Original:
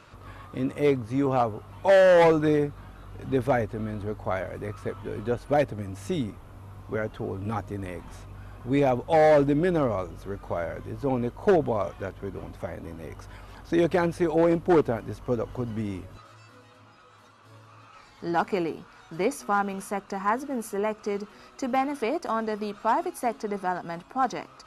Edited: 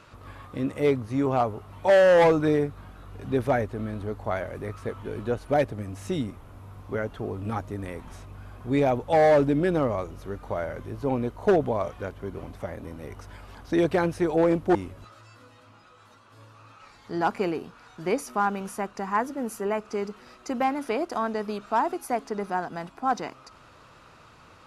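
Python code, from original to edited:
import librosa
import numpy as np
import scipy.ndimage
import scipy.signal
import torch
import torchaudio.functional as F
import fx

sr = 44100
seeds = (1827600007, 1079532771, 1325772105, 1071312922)

y = fx.edit(x, sr, fx.cut(start_s=14.75, length_s=1.13), tone=tone)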